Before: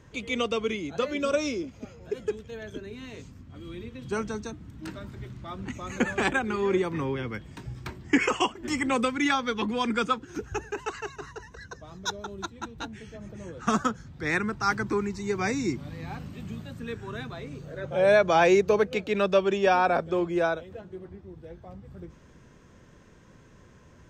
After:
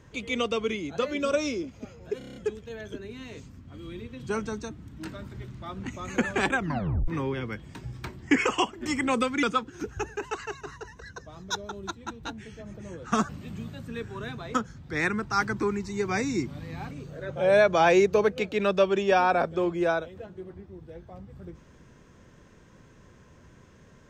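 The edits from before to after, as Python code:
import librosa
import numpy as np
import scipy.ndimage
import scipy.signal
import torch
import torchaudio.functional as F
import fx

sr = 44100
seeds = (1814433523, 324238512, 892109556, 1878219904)

y = fx.edit(x, sr, fx.stutter(start_s=2.18, slice_s=0.03, count=7),
    fx.tape_stop(start_s=6.38, length_s=0.52),
    fx.cut(start_s=9.25, length_s=0.73),
    fx.move(start_s=16.21, length_s=1.25, to_s=13.84), tone=tone)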